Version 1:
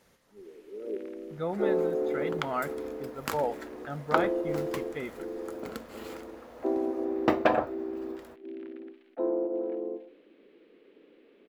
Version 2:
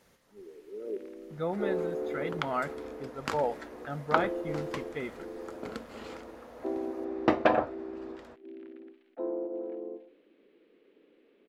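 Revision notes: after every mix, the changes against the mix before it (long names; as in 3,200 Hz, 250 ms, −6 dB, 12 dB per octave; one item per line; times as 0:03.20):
first sound −5.0 dB
second sound: add low-pass filter 6,300 Hz 12 dB per octave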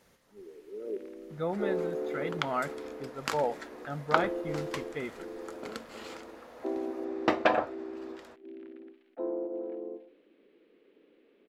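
second sound: add spectral tilt +2 dB per octave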